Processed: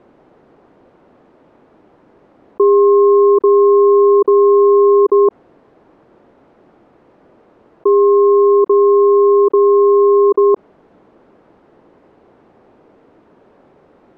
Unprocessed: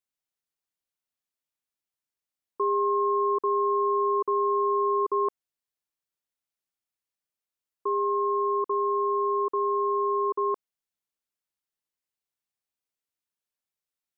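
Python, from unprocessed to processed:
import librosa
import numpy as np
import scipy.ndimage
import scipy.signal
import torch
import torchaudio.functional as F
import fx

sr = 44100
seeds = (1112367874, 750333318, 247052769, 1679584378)

y = scipy.signal.sosfilt(scipy.signal.butter(2, 1100.0, 'lowpass', fs=sr, output='sos'), x)
y = fx.peak_eq(y, sr, hz=350.0, db=15.0, octaves=2.5)
y = fx.env_flatten(y, sr, amount_pct=50)
y = F.gain(torch.from_numpy(y), 3.5).numpy()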